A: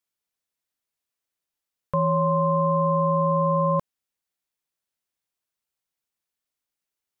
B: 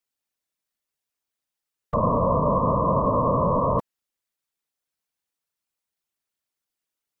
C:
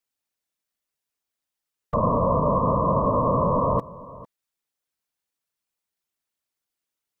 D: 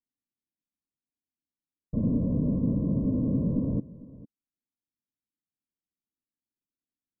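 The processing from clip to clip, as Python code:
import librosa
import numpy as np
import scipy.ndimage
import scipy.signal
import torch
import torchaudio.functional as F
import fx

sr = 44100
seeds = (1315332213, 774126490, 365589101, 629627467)

y1 = fx.whisperise(x, sr, seeds[0])
y2 = y1 + 10.0 ** (-19.0 / 20.0) * np.pad(y1, (int(451 * sr / 1000.0), 0))[:len(y1)]
y3 = fx.ladder_lowpass(y2, sr, hz=320.0, resonance_pct=50)
y3 = F.gain(torch.from_numpy(y3), 5.5).numpy()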